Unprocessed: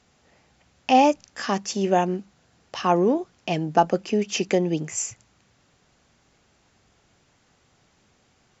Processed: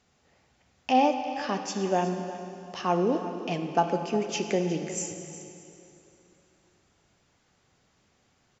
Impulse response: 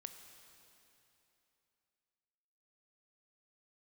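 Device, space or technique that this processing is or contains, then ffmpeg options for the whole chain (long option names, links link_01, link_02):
cave: -filter_complex "[0:a]aecho=1:1:362:0.178[link_01];[1:a]atrim=start_sample=2205[link_02];[link_01][link_02]afir=irnorm=-1:irlink=0,asettb=1/sr,asplit=3[link_03][link_04][link_05];[link_03]atrim=end=0.924[link_06];[link_04]atrim=start=0.92:end=1.65,asetpts=PTS-STARTPTS,afade=type=in:duration=0.004:curve=qsin,afade=type=out:start_time=0.726:duration=0.004:curve=qsin,lowpass=frequency=5400:width=0.5412,lowpass=frequency=5400:width=1.3066[link_07];[link_05]atrim=start=1.646[link_08];[link_06][link_07]acrossfade=duration=0.004:curve1=hsin:curve2=qsin[link_09];[link_09][link_08]acrossfade=duration=0.004:curve1=qsin:curve2=hsin"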